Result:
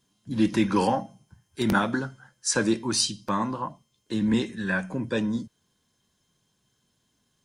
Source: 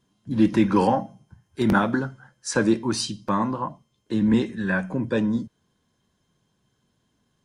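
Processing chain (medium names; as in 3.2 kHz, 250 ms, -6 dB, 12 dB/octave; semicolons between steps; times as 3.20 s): treble shelf 2.6 kHz +10 dB; trim -4 dB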